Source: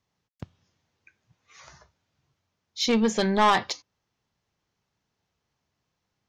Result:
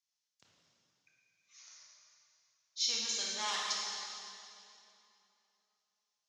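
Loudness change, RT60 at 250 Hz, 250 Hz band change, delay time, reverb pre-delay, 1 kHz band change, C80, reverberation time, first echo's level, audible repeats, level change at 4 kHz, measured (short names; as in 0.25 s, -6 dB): -11.0 dB, 3.1 s, -31.0 dB, none, 21 ms, -18.0 dB, 0.0 dB, 2.8 s, none, none, -3.0 dB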